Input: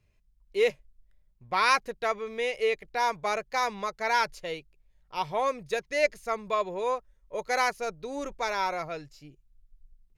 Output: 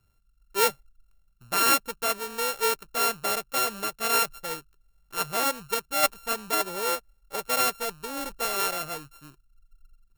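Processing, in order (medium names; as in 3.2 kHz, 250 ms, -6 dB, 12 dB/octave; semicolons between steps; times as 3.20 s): sorted samples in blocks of 32 samples; treble shelf 9 kHz +9.5 dB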